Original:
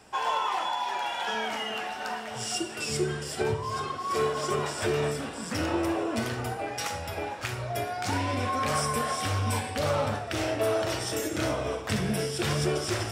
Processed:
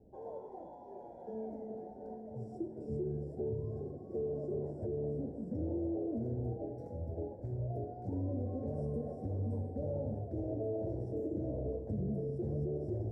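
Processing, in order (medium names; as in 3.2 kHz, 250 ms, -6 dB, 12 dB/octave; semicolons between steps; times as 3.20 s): inverse Chebyshev low-pass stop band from 1.1 kHz, stop band 40 dB; bass shelf 84 Hz +8 dB; hum notches 50/100/150 Hz; peak limiter -26 dBFS, peak gain reduction 8.5 dB; thinning echo 665 ms, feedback 80%, level -16 dB; trim -3.5 dB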